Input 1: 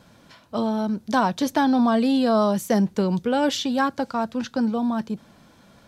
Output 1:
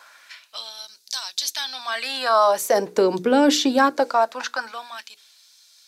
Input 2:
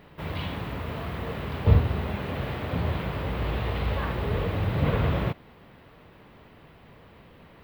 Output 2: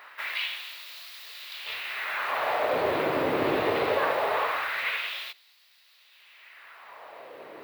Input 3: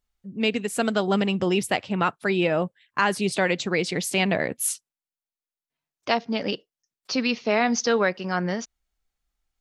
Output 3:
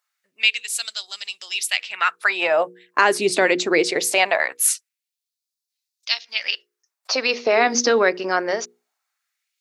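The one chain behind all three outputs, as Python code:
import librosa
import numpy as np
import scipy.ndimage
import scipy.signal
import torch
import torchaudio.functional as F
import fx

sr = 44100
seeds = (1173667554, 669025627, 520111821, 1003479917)

p1 = fx.hum_notches(x, sr, base_hz=60, count=8)
p2 = fx.filter_lfo_highpass(p1, sr, shape='sine', hz=0.22, low_hz=300.0, high_hz=4500.0, q=1.8)
p3 = fx.graphic_eq_31(p2, sr, hz=(200, 630, 3150), db=(-9, 3, -5))
p4 = fx.over_compress(p3, sr, threshold_db=-19.0, ratio=-1.0)
p5 = p3 + (p4 * librosa.db_to_amplitude(2.0))
y = fx.dynamic_eq(p5, sr, hz=600.0, q=0.74, threshold_db=-24.0, ratio=4.0, max_db=-5)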